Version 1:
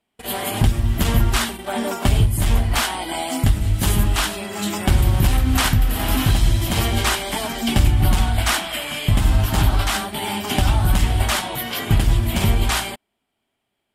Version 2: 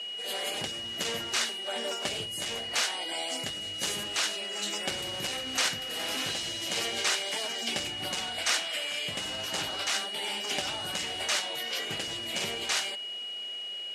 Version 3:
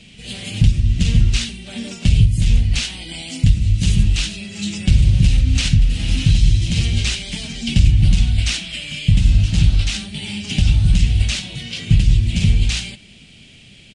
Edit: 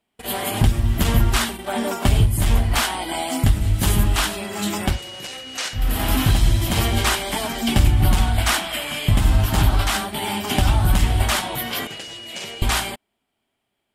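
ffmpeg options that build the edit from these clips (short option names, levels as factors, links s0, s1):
-filter_complex "[1:a]asplit=2[s0][s1];[0:a]asplit=3[s2][s3][s4];[s2]atrim=end=5[s5];[s0]atrim=start=4.84:end=5.88[s6];[s3]atrim=start=5.72:end=11.872[s7];[s1]atrim=start=11.868:end=12.622[s8];[s4]atrim=start=12.618[s9];[s5][s6]acrossfade=d=0.16:c1=tri:c2=tri[s10];[s10][s7]acrossfade=d=0.16:c1=tri:c2=tri[s11];[s11][s8]acrossfade=d=0.004:c1=hsin:c2=hsin[s12];[s12][s9]acrossfade=d=0.004:c1=hsin:c2=hsin"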